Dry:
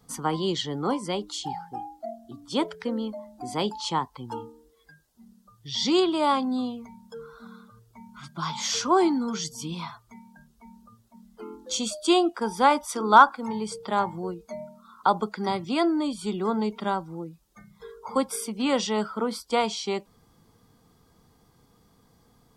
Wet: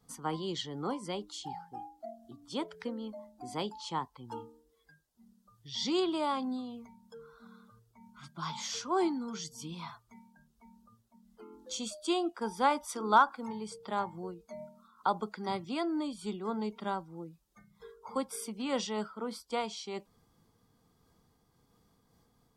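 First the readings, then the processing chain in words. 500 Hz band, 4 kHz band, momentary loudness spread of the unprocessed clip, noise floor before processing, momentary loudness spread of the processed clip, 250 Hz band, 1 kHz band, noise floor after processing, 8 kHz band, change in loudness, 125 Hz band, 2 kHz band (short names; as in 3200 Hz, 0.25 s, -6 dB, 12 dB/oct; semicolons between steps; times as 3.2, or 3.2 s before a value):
-9.0 dB, -9.0 dB, 18 LU, -62 dBFS, 18 LU, -9.0 dB, -9.0 dB, -72 dBFS, -9.0 dB, -9.0 dB, -8.5 dB, -9.0 dB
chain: noise-modulated level, depth 60%; gain -5.5 dB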